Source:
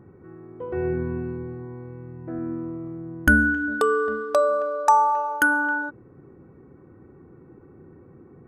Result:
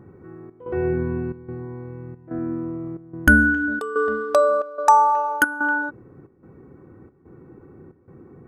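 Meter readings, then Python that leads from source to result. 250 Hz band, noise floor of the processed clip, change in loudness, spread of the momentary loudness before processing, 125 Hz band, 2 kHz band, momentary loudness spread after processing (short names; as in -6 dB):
+2.5 dB, -55 dBFS, +2.5 dB, 18 LU, +2.5 dB, +2.0 dB, 19 LU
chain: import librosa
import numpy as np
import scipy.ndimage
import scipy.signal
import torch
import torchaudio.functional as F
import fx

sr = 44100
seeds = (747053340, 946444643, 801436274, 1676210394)

y = fx.step_gate(x, sr, bpm=182, pattern='xxxxxx..xx', floor_db=-12.0, edge_ms=4.5)
y = F.gain(torch.from_numpy(y), 3.0).numpy()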